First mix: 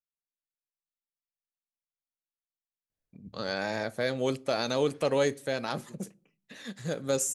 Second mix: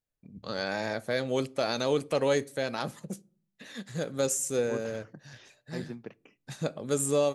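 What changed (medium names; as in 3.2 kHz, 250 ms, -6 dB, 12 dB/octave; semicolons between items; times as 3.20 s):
first voice: entry -2.90 s; second voice +12.0 dB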